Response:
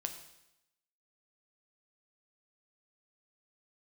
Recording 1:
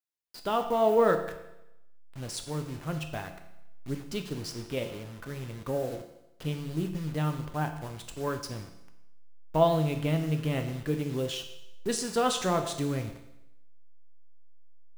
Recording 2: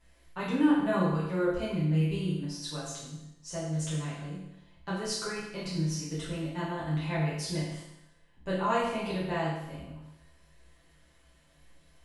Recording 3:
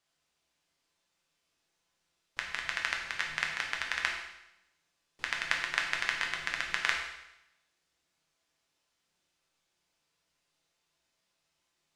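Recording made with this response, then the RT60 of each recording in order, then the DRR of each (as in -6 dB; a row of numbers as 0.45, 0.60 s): 1; 0.85, 0.85, 0.85 s; 5.5, -9.5, -1.0 dB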